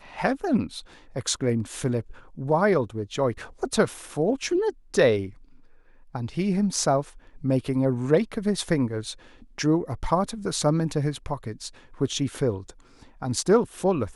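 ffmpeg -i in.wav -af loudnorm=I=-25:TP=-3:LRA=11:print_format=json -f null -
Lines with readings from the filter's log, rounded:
"input_i" : "-25.7",
"input_tp" : "-6.6",
"input_lra" : "2.0",
"input_thresh" : "-36.5",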